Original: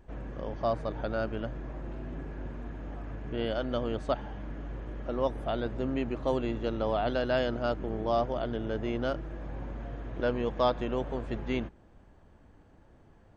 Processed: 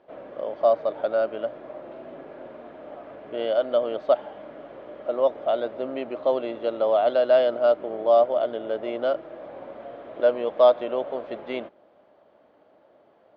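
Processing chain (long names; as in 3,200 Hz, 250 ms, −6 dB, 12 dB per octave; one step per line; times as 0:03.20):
loudspeaker in its box 420–3,900 Hz, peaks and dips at 600 Hz +10 dB, 920 Hz −3 dB, 1,700 Hz −7 dB, 2,600 Hz −4 dB
level +5 dB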